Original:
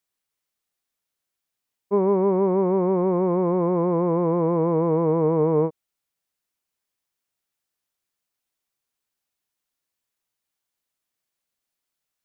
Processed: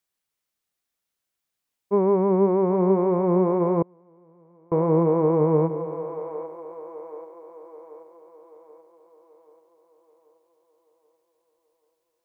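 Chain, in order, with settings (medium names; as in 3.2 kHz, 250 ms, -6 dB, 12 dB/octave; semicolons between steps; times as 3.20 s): two-band feedback delay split 430 Hz, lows 176 ms, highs 783 ms, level -10 dB; 3.82–4.72 s: inverted gate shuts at -23 dBFS, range -34 dB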